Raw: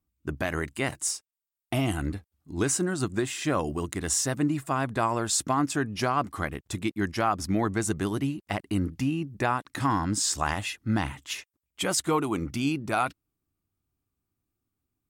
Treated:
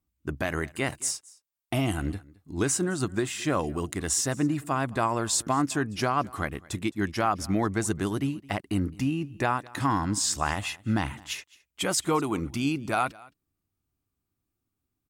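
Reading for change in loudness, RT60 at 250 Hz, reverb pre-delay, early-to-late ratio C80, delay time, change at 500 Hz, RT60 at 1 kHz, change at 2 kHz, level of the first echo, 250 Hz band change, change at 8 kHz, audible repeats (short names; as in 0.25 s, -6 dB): 0.0 dB, none, none, none, 0.216 s, 0.0 dB, none, 0.0 dB, -23.0 dB, 0.0 dB, 0.0 dB, 1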